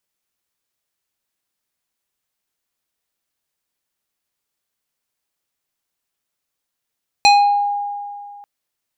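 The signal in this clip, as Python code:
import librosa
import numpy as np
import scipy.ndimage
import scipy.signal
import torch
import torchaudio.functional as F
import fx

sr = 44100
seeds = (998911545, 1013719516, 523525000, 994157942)

y = fx.fm2(sr, length_s=1.19, level_db=-6.0, carrier_hz=815.0, ratio=4.06, index=1.2, index_s=0.57, decay_s=2.31, shape='exponential')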